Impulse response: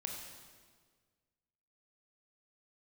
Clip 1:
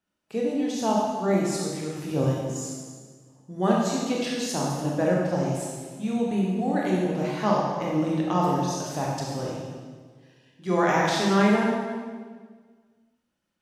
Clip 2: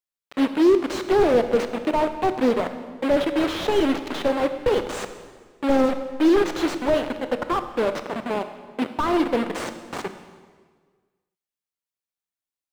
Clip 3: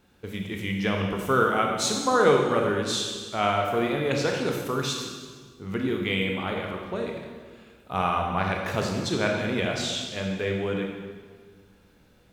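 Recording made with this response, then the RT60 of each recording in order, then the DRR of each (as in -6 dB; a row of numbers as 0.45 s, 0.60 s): 3; 1.6 s, 1.6 s, 1.6 s; -4.0 dB, 9.0 dB, 1.0 dB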